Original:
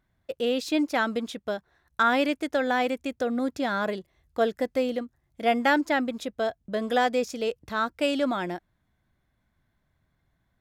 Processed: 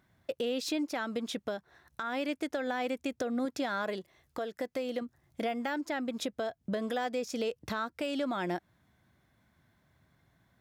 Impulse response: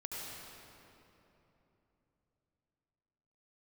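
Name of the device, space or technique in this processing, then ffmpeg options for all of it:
broadcast voice chain: -filter_complex "[0:a]asettb=1/sr,asplit=3[link_01][link_02][link_03];[link_01]atrim=end=3.454[link_04];[link_02]atrim=start=3.45:end=5.02,asetpts=PTS-STARTPTS,afade=type=in:duration=0.004:curve=qsin,afade=type=out:start_time=1.566:duration=0.004:curve=qsin,lowshelf=frequency=250:gain=-7[link_05];[link_03]atrim=start=5.016[link_06];[link_04][link_05]acrossfade=duration=0.004:curve1=hsin:curve2=qsin[link_07];[link_07][link_06]acrossfade=duration=0.004:curve1=qsin:curve2=hsin,highpass=87,deesser=0.65,acompressor=threshold=-35dB:ratio=4,equalizer=frequency=5500:width_type=o:width=0.23:gain=2,alimiter=level_in=5.5dB:limit=-24dB:level=0:latency=1:release=276,volume=-5.5dB,volume=6dB"

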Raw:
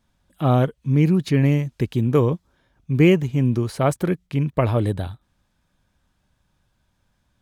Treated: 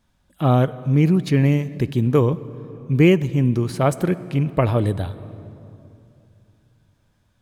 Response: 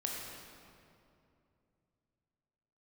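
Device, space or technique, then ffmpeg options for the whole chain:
compressed reverb return: -filter_complex "[0:a]asplit=2[link_01][link_02];[1:a]atrim=start_sample=2205[link_03];[link_02][link_03]afir=irnorm=-1:irlink=0,acompressor=threshold=-18dB:ratio=6,volume=-11.5dB[link_04];[link_01][link_04]amix=inputs=2:normalize=0"

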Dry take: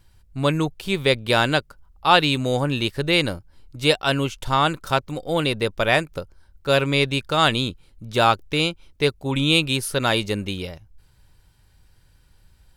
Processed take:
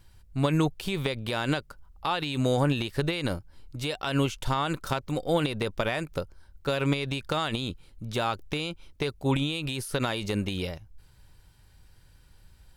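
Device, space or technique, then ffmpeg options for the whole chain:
de-esser from a sidechain: -filter_complex "[0:a]asplit=2[link_01][link_02];[link_02]highpass=frequency=6800:poles=1,apad=whole_len=563114[link_03];[link_01][link_03]sidechaincompress=threshold=-37dB:ratio=5:attack=2.7:release=50"

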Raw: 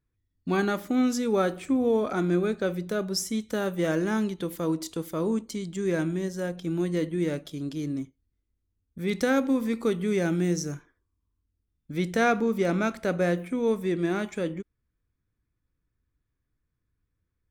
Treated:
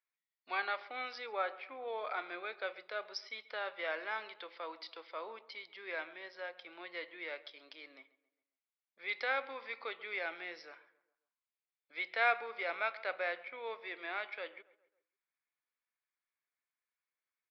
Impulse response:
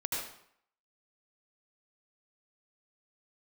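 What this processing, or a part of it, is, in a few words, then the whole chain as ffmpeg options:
musical greeting card: -filter_complex "[0:a]aresample=11025,aresample=44100,highpass=frequency=650:width=0.5412,highpass=frequency=650:width=1.3066,equalizer=frequency=2200:width_type=o:width=0.32:gain=8.5,asettb=1/sr,asplit=3[link_01][link_02][link_03];[link_01]atrim=end=1.264[link_04];[link_02]atrim=start=1.26:end=1.88,asetpts=PTS-STARTPTS,afade=type=in:duration=0.004:curve=qsin,afade=type=out:start_time=0.616:duration=0.004:curve=qsin,lowpass=frequency=2400:poles=1[link_05];[link_03]atrim=start=1.876[link_06];[link_04][link_05]acrossfade=duration=0.004:curve1=hsin:curve2=qsin[link_07];[link_07][link_06]acrossfade=duration=0.004:curve1=qsin:curve2=hsin,asplit=2[link_08][link_09];[link_09]adelay=136,lowpass=frequency=2200:poles=1,volume=-18.5dB,asplit=2[link_10][link_11];[link_11]adelay=136,lowpass=frequency=2200:poles=1,volume=0.47,asplit=2[link_12][link_13];[link_13]adelay=136,lowpass=frequency=2200:poles=1,volume=0.47,asplit=2[link_14][link_15];[link_15]adelay=136,lowpass=frequency=2200:poles=1,volume=0.47[link_16];[link_08][link_10][link_12][link_14][link_16]amix=inputs=5:normalize=0,volume=-5.5dB"

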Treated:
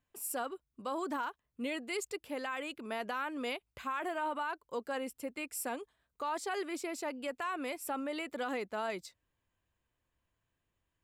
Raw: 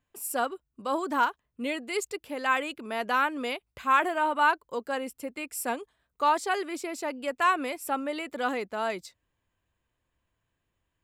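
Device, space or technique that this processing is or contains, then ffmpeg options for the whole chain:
stacked limiters: -af "alimiter=limit=-17dB:level=0:latency=1:release=322,alimiter=limit=-24dB:level=0:latency=1:release=42,volume=-4dB"

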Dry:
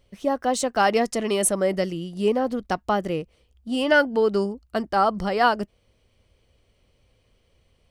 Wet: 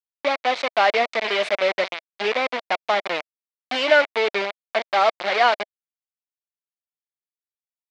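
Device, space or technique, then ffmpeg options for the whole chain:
hand-held game console: -filter_complex "[0:a]acrusher=bits=3:mix=0:aa=0.000001,highpass=480,equalizer=frequency=640:width_type=q:width=4:gain=6,equalizer=frequency=2200:width_type=q:width=4:gain=9,equalizer=frequency=3700:width_type=q:width=4:gain=3,lowpass=frequency=4400:width=0.5412,lowpass=frequency=4400:width=1.3066,asettb=1/sr,asplit=3[link_01][link_02][link_03];[link_01]atrim=end=3.174[link_04];[link_02]atrim=start=3.17:end=3.86,asetpts=PTS-STARTPTS,afade=type=in:duration=0.004:curve=qsin,afade=type=out:start_time=0.686:duration=0.004:curve=qsin,highshelf=frequency=7900:gain=8.5[link_05];[link_03]atrim=start=3.856[link_06];[link_04][link_05]acrossfade=duration=0.004:curve1=hsin:curve2=qsin[link_07];[link_07][link_06]acrossfade=duration=0.004:curve1=qsin:curve2=hsin"

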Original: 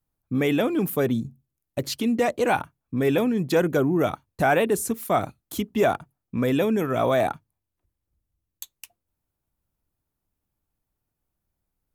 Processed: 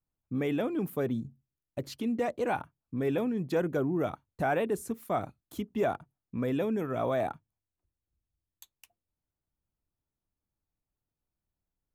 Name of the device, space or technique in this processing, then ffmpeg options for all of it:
behind a face mask: -af "highshelf=frequency=2400:gain=-8,volume=-7.5dB"

